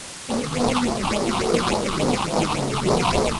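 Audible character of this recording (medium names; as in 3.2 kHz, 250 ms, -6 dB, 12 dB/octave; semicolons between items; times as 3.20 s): aliases and images of a low sample rate 1.7 kHz, jitter 20%; phasing stages 6, 3.5 Hz, lowest notch 470–2800 Hz; a quantiser's noise floor 6-bit, dither triangular; IMA ADPCM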